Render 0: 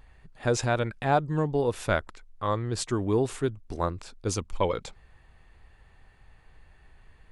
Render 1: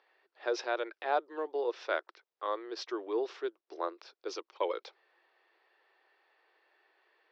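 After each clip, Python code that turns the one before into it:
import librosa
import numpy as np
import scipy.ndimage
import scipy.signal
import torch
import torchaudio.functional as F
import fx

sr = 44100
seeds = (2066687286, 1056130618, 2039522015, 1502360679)

y = scipy.signal.sosfilt(scipy.signal.cheby1(5, 1.0, [340.0, 5600.0], 'bandpass', fs=sr, output='sos'), x)
y = y * librosa.db_to_amplitude(-5.5)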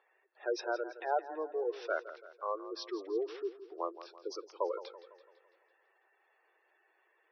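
y = fx.spec_gate(x, sr, threshold_db=-15, keep='strong')
y = fx.echo_warbled(y, sr, ms=167, feedback_pct=50, rate_hz=2.8, cents=61, wet_db=-14.0)
y = y * librosa.db_to_amplitude(-1.5)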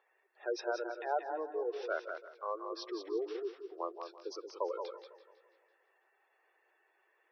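y = x + 10.0 ** (-6.5 / 20.0) * np.pad(x, (int(185 * sr / 1000.0), 0))[:len(x)]
y = y * librosa.db_to_amplitude(-2.0)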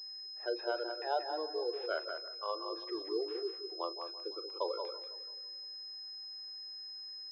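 y = fx.doubler(x, sr, ms=39.0, db=-13)
y = fx.pwm(y, sr, carrier_hz=5100.0)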